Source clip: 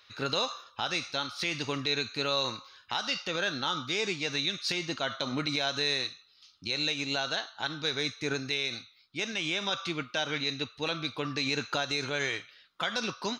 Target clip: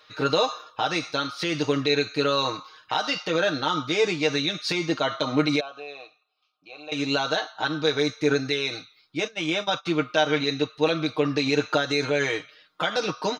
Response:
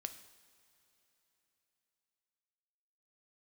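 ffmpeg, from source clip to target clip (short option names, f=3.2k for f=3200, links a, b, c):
-filter_complex "[0:a]asettb=1/sr,asplit=3[a][b][c];[a]atrim=end=5.604[d];[b]atrim=start=5.6:end=6.92,asetpts=PTS-STARTPTS,afade=t=in:d=0.004:c=qsin,afade=t=out:st=1.316:d=0.004:c=qsin,asplit=3[e][f][g];[e]bandpass=f=730:t=q:w=8,volume=0dB[h];[f]bandpass=f=1.09k:t=q:w=8,volume=-6dB[i];[g]bandpass=f=2.44k:t=q:w=8,volume=-9dB[j];[h][i][j]amix=inputs=3:normalize=0[k];[c]atrim=start=6.916[l];[d][k]acrossfade=d=0.004:c1=hsin:c2=qsin[m];[m][l]acrossfade=d=0.004:c1=qsin:c2=hsin,asplit=3[n][o][p];[n]afade=t=out:st=9.26:d=0.02[q];[o]agate=range=-22dB:threshold=-32dB:ratio=16:detection=peak,afade=t=in:st=9.26:d=0.02,afade=t=out:st=9.85:d=0.02[r];[p]afade=t=in:st=9.85:d=0.02[s];[q][r][s]amix=inputs=3:normalize=0,equalizer=f=500:w=0.46:g=9.5,aecho=1:1:6.5:0.77"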